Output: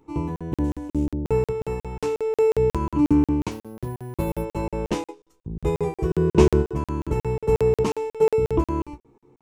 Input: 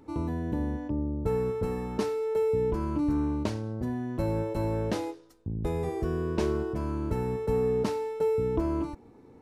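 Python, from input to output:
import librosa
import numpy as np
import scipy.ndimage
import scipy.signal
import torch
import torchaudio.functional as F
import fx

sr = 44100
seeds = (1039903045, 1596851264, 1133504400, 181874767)

p1 = fx.cvsd(x, sr, bps=64000, at=(0.64, 1.06))
p2 = fx.ripple_eq(p1, sr, per_octave=0.71, db=7)
p3 = fx.resample_bad(p2, sr, factor=4, down='none', up='hold', at=(3.51, 4.42))
p4 = fx.low_shelf(p3, sr, hz=410.0, db=5.5, at=(6.1, 6.61), fade=0.02)
p5 = p4 + fx.room_early_taps(p4, sr, ms=(14, 31), db=(-7.0, -9.5), dry=0)
p6 = fx.buffer_crackle(p5, sr, first_s=0.36, period_s=0.18, block=2048, kind='zero')
p7 = fx.upward_expand(p6, sr, threshold_db=-45.0, expansion=1.5)
y = p7 * 10.0 ** (8.0 / 20.0)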